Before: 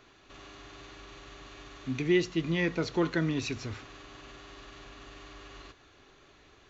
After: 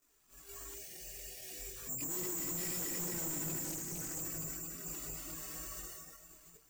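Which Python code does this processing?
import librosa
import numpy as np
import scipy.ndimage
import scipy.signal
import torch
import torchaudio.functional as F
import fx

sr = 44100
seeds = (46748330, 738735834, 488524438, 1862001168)

y = fx.reverse_delay_fb(x, sr, ms=116, feedback_pct=85, wet_db=-3)
y = fx.spec_gate(y, sr, threshold_db=-20, keep='strong')
y = (np.kron(scipy.signal.resample_poly(y, 1, 6), np.eye(6)[0]) * 6)[:len(y)]
y = np.sign(y) * np.maximum(np.abs(y) - 10.0 ** (-52.5 / 20.0), 0.0)
y = fx.noise_reduce_blind(y, sr, reduce_db=12)
y = fx.cheby1_bandstop(y, sr, low_hz=580.0, high_hz=2200.0, order=2, at=(0.72, 1.76))
y = fx.chorus_voices(y, sr, voices=4, hz=0.39, base_ms=21, depth_ms=3.6, mix_pct=70)
y = fx.tremolo_random(y, sr, seeds[0], hz=3.5, depth_pct=55)
y = 10.0 ** (-36.5 / 20.0) * np.tanh(y / 10.0 ** (-36.5 / 20.0))
y = fx.doppler_dist(y, sr, depth_ms=0.25, at=(3.64, 4.19))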